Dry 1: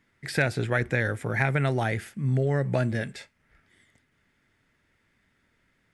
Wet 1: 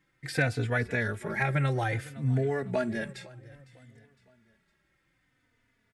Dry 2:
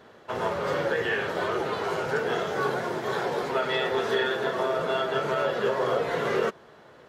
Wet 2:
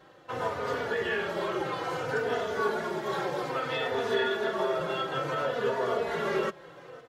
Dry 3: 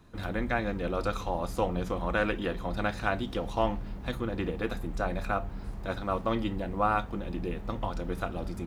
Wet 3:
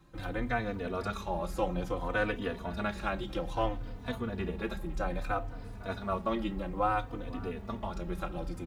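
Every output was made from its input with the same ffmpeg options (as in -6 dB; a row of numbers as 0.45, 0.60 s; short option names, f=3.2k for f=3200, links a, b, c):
-filter_complex "[0:a]aecho=1:1:507|1014|1521:0.106|0.0434|0.0178,asplit=2[a][b];[b]adelay=3.3,afreqshift=-0.6[c];[a][c]amix=inputs=2:normalize=1"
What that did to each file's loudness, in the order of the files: -3.0, -3.0, -3.0 LU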